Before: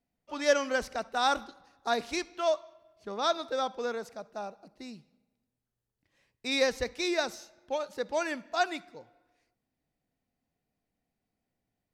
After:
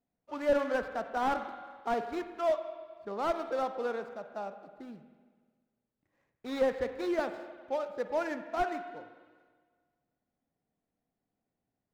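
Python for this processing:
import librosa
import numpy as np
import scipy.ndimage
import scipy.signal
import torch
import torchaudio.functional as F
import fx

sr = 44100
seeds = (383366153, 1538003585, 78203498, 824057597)

y = scipy.signal.medfilt(x, 15)
y = fx.lowpass(y, sr, hz=3400.0, slope=6)
y = fx.low_shelf(y, sr, hz=99.0, db=-8.5)
y = fx.rev_spring(y, sr, rt60_s=1.6, pass_ms=(45, 52), chirp_ms=60, drr_db=9.5)
y = fx.slew_limit(y, sr, full_power_hz=49.0)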